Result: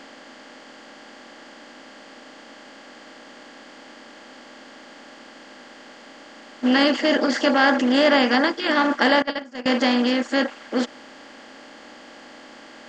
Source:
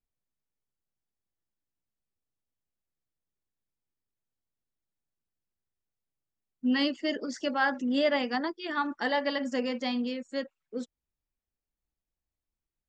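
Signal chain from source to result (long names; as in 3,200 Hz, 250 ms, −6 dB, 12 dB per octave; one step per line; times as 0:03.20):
compressor on every frequency bin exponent 0.4
0:09.22–0:09.66: noise gate −20 dBFS, range −23 dB
level +5.5 dB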